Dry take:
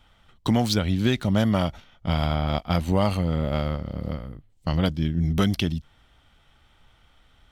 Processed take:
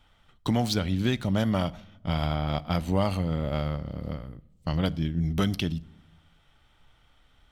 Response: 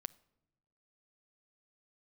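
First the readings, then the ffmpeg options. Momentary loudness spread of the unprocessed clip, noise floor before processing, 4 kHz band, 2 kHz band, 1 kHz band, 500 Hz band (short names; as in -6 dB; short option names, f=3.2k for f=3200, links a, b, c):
11 LU, -60 dBFS, -3.5 dB, -3.5 dB, -3.5 dB, -3.5 dB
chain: -filter_complex "[1:a]atrim=start_sample=2205[a];[0:a][a]afir=irnorm=-1:irlink=0"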